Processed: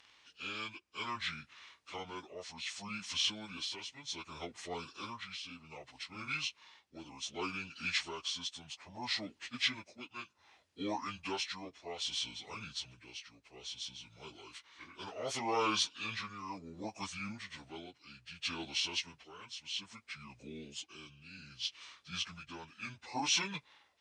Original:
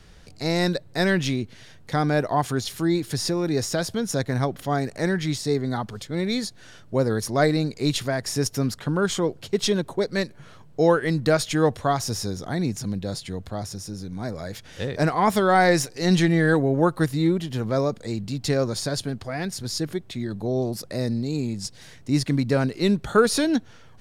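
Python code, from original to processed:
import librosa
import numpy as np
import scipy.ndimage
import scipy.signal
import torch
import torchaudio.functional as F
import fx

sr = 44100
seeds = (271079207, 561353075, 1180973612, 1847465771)

y = fx.pitch_bins(x, sr, semitones=-8.5)
y = y * (1.0 - 0.61 / 2.0 + 0.61 / 2.0 * np.cos(2.0 * np.pi * 0.64 * (np.arange(len(y)) / sr)))
y = fx.bandpass_q(y, sr, hz=4600.0, q=0.58)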